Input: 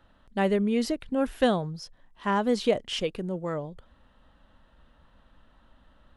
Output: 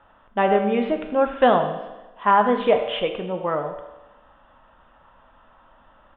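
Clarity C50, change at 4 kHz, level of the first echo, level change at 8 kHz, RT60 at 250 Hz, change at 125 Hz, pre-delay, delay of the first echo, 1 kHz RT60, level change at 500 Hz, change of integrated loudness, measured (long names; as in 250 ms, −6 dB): 7.5 dB, +2.0 dB, −14.0 dB, below −35 dB, 1.1 s, −0.5 dB, 9 ms, 80 ms, 1.1 s, +7.0 dB, +6.5 dB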